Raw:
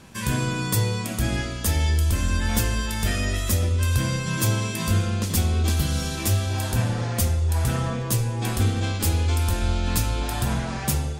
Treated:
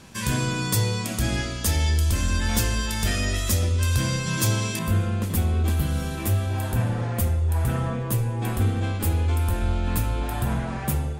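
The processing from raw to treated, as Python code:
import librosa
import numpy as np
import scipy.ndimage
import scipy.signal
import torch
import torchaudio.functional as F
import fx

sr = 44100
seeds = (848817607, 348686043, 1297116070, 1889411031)

y = fx.peak_eq(x, sr, hz=5400.0, db=fx.steps((0.0, 3.0), (4.79, -11.5)), octaves=1.5)
y = 10.0 ** (-9.5 / 20.0) * np.tanh(y / 10.0 ** (-9.5 / 20.0))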